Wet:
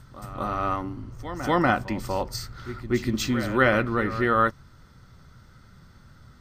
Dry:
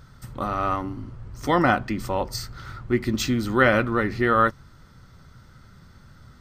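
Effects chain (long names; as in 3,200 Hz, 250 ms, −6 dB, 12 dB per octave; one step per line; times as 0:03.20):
echo ahead of the sound 241 ms −13 dB
level −2 dB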